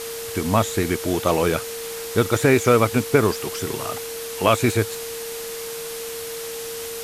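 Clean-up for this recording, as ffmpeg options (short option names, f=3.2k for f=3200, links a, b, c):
-af "bandreject=f=460:w=30,afftdn=nr=30:nf=-32"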